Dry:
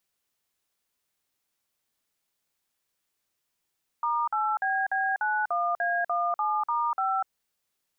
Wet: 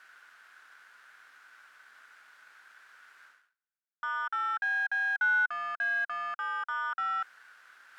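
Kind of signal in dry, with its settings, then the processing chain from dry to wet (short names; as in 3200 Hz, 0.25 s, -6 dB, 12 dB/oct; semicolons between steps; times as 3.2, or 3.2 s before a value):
DTMF "*8BB91A17*5", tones 0.246 s, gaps 49 ms, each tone -26.5 dBFS
reverse; upward compressor, threshold -33 dBFS; reverse; sample leveller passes 5; band-pass 1500 Hz, Q 7.6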